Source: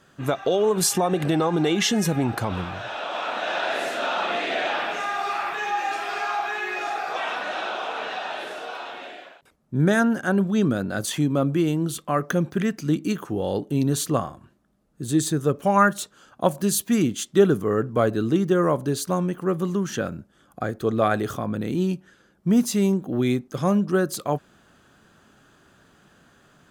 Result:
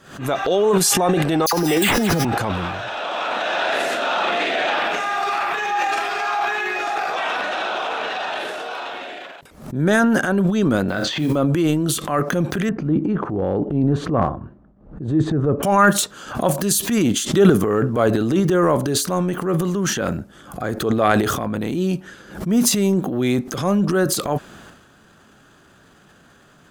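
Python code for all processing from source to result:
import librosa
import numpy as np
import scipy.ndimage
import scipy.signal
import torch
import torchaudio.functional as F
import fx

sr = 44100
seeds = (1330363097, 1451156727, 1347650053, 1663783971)

y = fx.chain(x, sr, fx.resample_bad(factor=8, down='none', up='hold'),
    fx.dispersion(late='lows', ms=69.0, hz=1900.0), at=(1.46, 2.25))
y = fx.chain(y, sr, fx.lowpass(hz=4600.0, slope=24),
    fx.mod_noise(seeds[0], snr_db=32),
    fx.room_flutter(wall_m=5.5, rt60_s=0.25), at=(10.88, 11.36))
y = fx.chain(y, sr, fx.lowpass(hz=1100.0, slope=12),
    fx.low_shelf(hz=140.0, db=6.5), at=(12.69, 15.63))
y = fx.dynamic_eq(y, sr, hz=120.0, q=0.75, threshold_db=-37.0, ratio=4.0, max_db=-4)
y = fx.transient(y, sr, attack_db=-5, sustain_db=10)
y = fx.pre_swell(y, sr, db_per_s=110.0)
y = F.gain(torch.from_numpy(y), 4.5).numpy()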